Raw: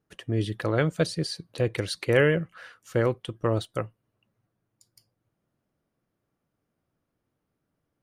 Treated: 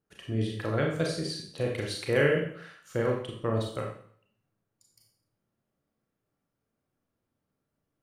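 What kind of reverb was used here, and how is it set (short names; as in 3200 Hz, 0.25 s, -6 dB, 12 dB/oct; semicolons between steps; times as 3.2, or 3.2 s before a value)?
Schroeder reverb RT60 0.56 s, combs from 28 ms, DRR -0.5 dB; gain -6 dB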